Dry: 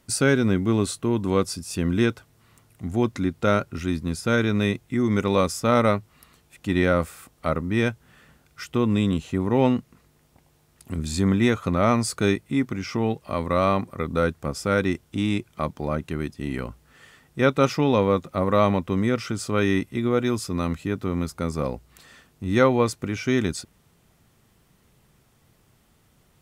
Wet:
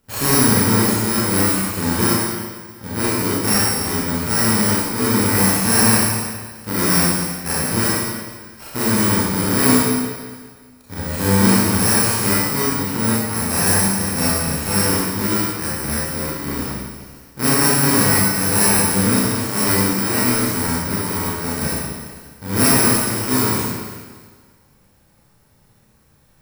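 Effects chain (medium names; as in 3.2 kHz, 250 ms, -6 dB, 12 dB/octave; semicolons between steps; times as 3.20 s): bit-reversed sample order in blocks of 64 samples; in parallel at -4 dB: sample-and-hold 13×; on the sum: Schroeder reverb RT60 1.6 s, combs from 28 ms, DRR -8 dB; dynamic bell 8.6 kHz, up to +4 dB, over -26 dBFS, Q 0.79; trim -6.5 dB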